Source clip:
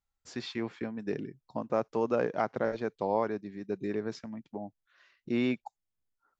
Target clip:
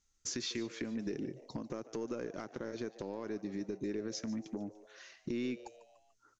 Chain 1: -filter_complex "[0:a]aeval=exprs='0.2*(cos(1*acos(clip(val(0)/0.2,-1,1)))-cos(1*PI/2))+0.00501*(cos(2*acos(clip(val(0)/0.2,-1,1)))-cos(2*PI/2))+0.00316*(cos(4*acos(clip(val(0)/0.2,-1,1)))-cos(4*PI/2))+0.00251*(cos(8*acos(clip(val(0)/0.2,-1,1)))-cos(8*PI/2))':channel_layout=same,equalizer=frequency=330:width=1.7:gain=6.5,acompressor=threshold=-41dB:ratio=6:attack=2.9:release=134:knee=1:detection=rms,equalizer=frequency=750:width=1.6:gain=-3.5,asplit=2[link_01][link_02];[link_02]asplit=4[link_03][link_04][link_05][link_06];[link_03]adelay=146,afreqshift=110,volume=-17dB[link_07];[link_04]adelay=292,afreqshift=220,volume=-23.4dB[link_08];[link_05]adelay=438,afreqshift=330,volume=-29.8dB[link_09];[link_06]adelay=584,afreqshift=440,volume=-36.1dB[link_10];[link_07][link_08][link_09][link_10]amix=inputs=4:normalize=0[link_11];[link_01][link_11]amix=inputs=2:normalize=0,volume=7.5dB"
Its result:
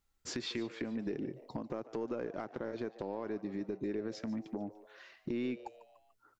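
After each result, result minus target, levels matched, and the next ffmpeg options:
8,000 Hz band −8.0 dB; 1,000 Hz band +3.5 dB
-filter_complex "[0:a]aeval=exprs='0.2*(cos(1*acos(clip(val(0)/0.2,-1,1)))-cos(1*PI/2))+0.00501*(cos(2*acos(clip(val(0)/0.2,-1,1)))-cos(2*PI/2))+0.00316*(cos(4*acos(clip(val(0)/0.2,-1,1)))-cos(4*PI/2))+0.00251*(cos(8*acos(clip(val(0)/0.2,-1,1)))-cos(8*PI/2))':channel_layout=same,lowpass=frequency=6300:width_type=q:width=5.7,equalizer=frequency=330:width=1.7:gain=6.5,acompressor=threshold=-41dB:ratio=6:attack=2.9:release=134:knee=1:detection=rms,equalizer=frequency=750:width=1.6:gain=-3.5,asplit=2[link_01][link_02];[link_02]asplit=4[link_03][link_04][link_05][link_06];[link_03]adelay=146,afreqshift=110,volume=-17dB[link_07];[link_04]adelay=292,afreqshift=220,volume=-23.4dB[link_08];[link_05]adelay=438,afreqshift=330,volume=-29.8dB[link_09];[link_06]adelay=584,afreqshift=440,volume=-36.1dB[link_10];[link_07][link_08][link_09][link_10]amix=inputs=4:normalize=0[link_11];[link_01][link_11]amix=inputs=2:normalize=0,volume=7.5dB"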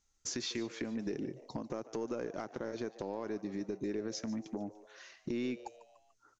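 1,000 Hz band +3.0 dB
-filter_complex "[0:a]aeval=exprs='0.2*(cos(1*acos(clip(val(0)/0.2,-1,1)))-cos(1*PI/2))+0.00501*(cos(2*acos(clip(val(0)/0.2,-1,1)))-cos(2*PI/2))+0.00316*(cos(4*acos(clip(val(0)/0.2,-1,1)))-cos(4*PI/2))+0.00251*(cos(8*acos(clip(val(0)/0.2,-1,1)))-cos(8*PI/2))':channel_layout=same,lowpass=frequency=6300:width_type=q:width=5.7,equalizer=frequency=330:width=1.7:gain=6.5,acompressor=threshold=-41dB:ratio=6:attack=2.9:release=134:knee=1:detection=rms,equalizer=frequency=750:width=1.6:gain=-9.5,asplit=2[link_01][link_02];[link_02]asplit=4[link_03][link_04][link_05][link_06];[link_03]adelay=146,afreqshift=110,volume=-17dB[link_07];[link_04]adelay=292,afreqshift=220,volume=-23.4dB[link_08];[link_05]adelay=438,afreqshift=330,volume=-29.8dB[link_09];[link_06]adelay=584,afreqshift=440,volume=-36.1dB[link_10];[link_07][link_08][link_09][link_10]amix=inputs=4:normalize=0[link_11];[link_01][link_11]amix=inputs=2:normalize=0,volume=7.5dB"

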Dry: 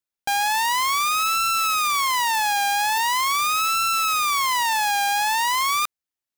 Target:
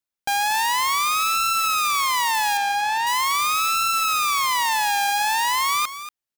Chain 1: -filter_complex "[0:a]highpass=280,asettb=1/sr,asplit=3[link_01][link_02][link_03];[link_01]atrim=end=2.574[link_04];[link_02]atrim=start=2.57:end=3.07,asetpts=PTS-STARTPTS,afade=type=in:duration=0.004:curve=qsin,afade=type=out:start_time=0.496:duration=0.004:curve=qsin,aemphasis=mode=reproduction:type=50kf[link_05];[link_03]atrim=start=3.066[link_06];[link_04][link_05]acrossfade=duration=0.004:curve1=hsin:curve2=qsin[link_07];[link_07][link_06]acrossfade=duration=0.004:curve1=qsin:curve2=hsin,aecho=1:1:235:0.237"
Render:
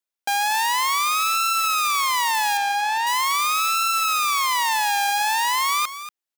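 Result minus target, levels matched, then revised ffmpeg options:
250 Hz band −3.5 dB
-filter_complex "[0:a]asettb=1/sr,asplit=3[link_01][link_02][link_03];[link_01]atrim=end=2.574[link_04];[link_02]atrim=start=2.57:end=3.07,asetpts=PTS-STARTPTS,afade=type=in:duration=0.004:curve=qsin,afade=type=out:start_time=0.496:duration=0.004:curve=qsin,aemphasis=mode=reproduction:type=50kf[link_05];[link_03]atrim=start=3.066[link_06];[link_04][link_05]acrossfade=duration=0.004:curve1=hsin:curve2=qsin[link_07];[link_07][link_06]acrossfade=duration=0.004:curve1=qsin:curve2=hsin,aecho=1:1:235:0.237"

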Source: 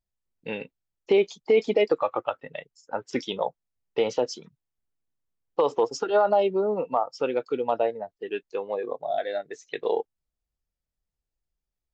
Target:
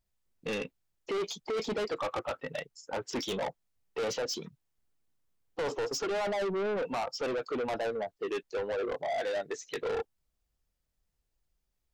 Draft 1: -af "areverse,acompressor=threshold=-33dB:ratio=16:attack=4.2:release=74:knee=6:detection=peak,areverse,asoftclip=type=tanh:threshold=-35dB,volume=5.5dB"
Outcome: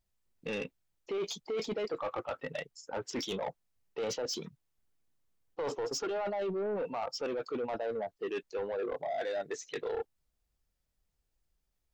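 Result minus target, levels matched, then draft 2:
downward compressor: peak gain reduction +10.5 dB
-af "areverse,acompressor=threshold=-22dB:ratio=16:attack=4.2:release=74:knee=6:detection=peak,areverse,asoftclip=type=tanh:threshold=-35dB,volume=5.5dB"

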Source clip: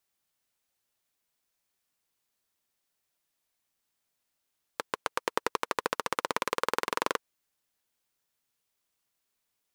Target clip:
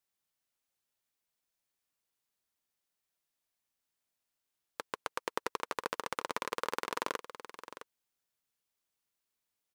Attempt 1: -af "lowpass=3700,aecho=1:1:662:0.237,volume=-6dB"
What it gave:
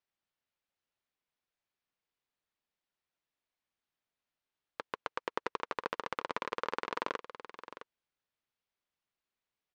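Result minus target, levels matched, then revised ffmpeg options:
4,000 Hz band −2.5 dB
-af "aecho=1:1:662:0.237,volume=-6dB"

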